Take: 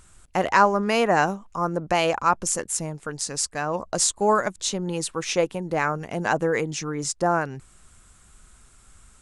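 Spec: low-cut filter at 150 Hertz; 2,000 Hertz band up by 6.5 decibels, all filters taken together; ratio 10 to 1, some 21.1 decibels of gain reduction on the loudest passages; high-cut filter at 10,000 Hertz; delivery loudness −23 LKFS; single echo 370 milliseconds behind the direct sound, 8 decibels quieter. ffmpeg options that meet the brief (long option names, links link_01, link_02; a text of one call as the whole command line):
ffmpeg -i in.wav -af "highpass=150,lowpass=10000,equalizer=frequency=2000:width_type=o:gain=8.5,acompressor=threshold=-31dB:ratio=10,aecho=1:1:370:0.398,volume=11.5dB" out.wav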